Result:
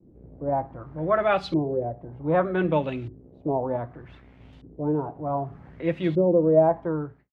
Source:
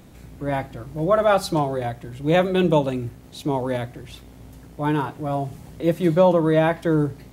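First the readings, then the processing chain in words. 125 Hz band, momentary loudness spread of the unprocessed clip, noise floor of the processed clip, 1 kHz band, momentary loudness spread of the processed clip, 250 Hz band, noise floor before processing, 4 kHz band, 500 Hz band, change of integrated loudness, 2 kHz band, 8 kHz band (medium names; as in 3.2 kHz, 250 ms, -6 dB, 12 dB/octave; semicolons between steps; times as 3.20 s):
-5.5 dB, 14 LU, -53 dBFS, -3.5 dB, 14 LU, -4.0 dB, -45 dBFS, -9.5 dB, -3.0 dB, -3.5 dB, -5.0 dB, under -20 dB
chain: fade out at the end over 0.57 s; LFO low-pass saw up 0.65 Hz 330–3500 Hz; expander -41 dBFS; trim -5.5 dB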